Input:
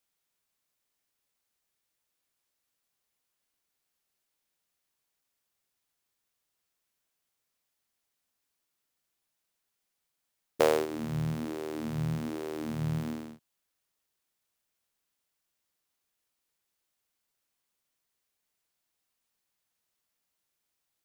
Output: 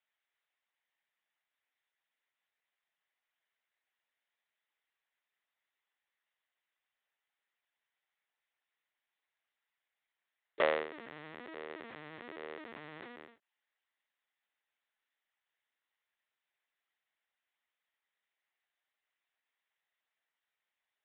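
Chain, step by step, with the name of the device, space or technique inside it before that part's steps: talking toy (LPC vocoder at 8 kHz pitch kept; high-pass 530 Hz 12 dB/octave; peaking EQ 1.9 kHz +8.5 dB 0.37 oct); trim -2 dB

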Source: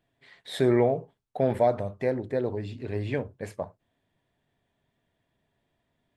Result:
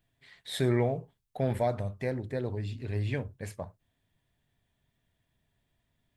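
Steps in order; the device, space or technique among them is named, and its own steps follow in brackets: smiley-face EQ (bass shelf 140 Hz +6.5 dB; peaking EQ 470 Hz -7.5 dB 3 oct; treble shelf 8.7 kHz +6 dB)

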